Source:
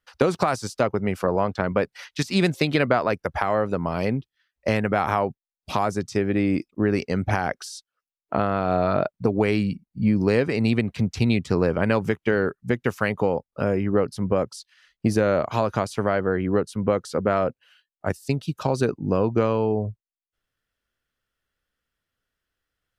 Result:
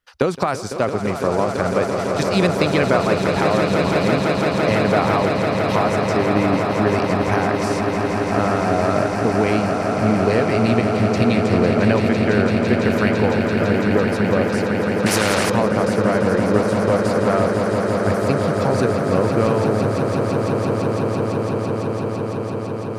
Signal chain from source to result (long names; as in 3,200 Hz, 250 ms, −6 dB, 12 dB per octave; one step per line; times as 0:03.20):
on a send: echo that builds up and dies away 168 ms, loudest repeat 8, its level −8.5 dB
0:15.06–0:15.50: on the sum: every bin compressed towards the loudest bin 2 to 1
level +1.5 dB